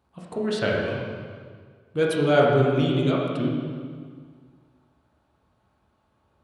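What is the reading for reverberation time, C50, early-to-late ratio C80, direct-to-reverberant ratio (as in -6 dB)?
1.8 s, 0.0 dB, 1.5 dB, -4.0 dB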